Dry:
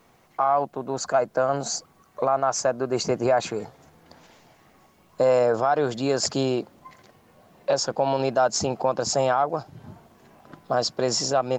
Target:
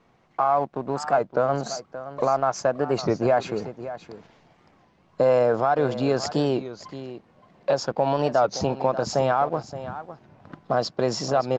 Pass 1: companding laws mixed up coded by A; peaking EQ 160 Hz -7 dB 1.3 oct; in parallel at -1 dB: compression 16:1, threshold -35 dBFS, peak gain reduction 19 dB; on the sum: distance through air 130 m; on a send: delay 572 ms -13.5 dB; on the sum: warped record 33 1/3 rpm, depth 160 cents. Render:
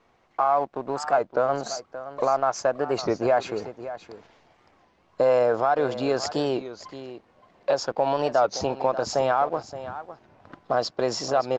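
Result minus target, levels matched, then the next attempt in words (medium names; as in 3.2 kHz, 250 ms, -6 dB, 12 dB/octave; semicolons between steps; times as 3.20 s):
125 Hz band -6.5 dB
companding laws mixed up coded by A; peaking EQ 160 Hz +2.5 dB 1.3 oct; in parallel at -1 dB: compression 16:1, threshold -35 dBFS, peak gain reduction 20 dB; on the sum: distance through air 130 m; on a send: delay 572 ms -13.5 dB; on the sum: warped record 33 1/3 rpm, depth 160 cents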